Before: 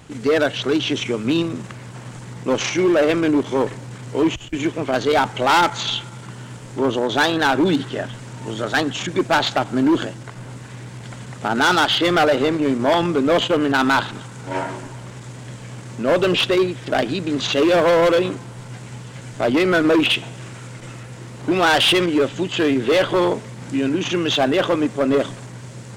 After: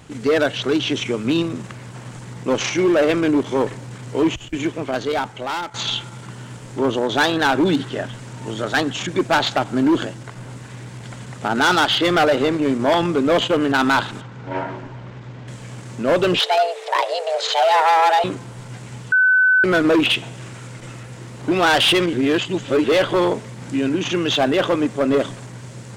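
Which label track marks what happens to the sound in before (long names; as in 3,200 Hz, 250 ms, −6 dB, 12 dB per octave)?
4.480000	5.740000	fade out, to −15 dB
14.210000	15.480000	high-frequency loss of the air 210 metres
16.390000	18.240000	frequency shifter +320 Hz
19.120000	19.640000	beep over 1,510 Hz −11 dBFS
22.130000	22.840000	reverse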